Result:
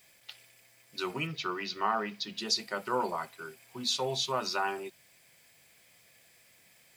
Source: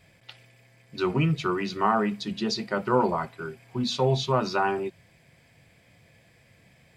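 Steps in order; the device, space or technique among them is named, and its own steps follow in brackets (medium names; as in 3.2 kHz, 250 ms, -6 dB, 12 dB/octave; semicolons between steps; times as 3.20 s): 1.27–2.38 s: steep low-pass 5.8 kHz; turntable without a phono preamp (RIAA curve recording; white noise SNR 32 dB); trim -6 dB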